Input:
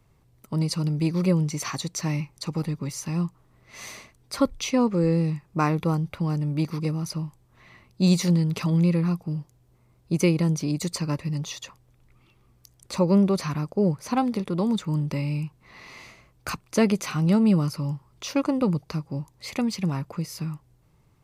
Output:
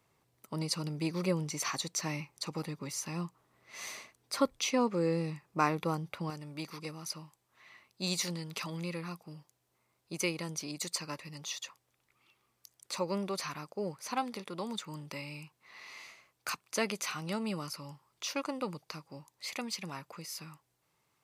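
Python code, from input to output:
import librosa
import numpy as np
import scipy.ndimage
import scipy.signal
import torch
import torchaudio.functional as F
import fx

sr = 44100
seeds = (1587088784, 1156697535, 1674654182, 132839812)

y = fx.highpass(x, sr, hz=fx.steps((0.0, 500.0), (6.3, 1200.0)), slope=6)
y = y * librosa.db_to_amplitude(-2.5)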